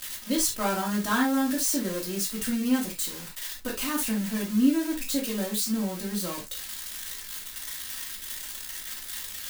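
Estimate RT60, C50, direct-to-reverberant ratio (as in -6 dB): not exponential, 8.5 dB, -4.0 dB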